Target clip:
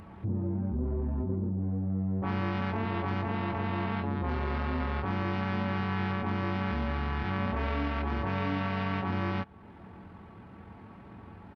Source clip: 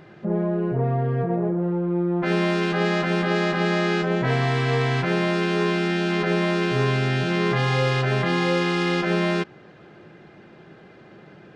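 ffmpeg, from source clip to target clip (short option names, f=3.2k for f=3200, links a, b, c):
-filter_complex "[0:a]highshelf=f=3.7k:g=8,asplit=2[a][b];[b]alimiter=limit=-14dB:level=0:latency=1:release=246,volume=0dB[c];[a][c]amix=inputs=2:normalize=0,acompressor=threshold=-32dB:ratio=1.5,asetrate=24046,aresample=44100,atempo=1.83401,volume=-7dB"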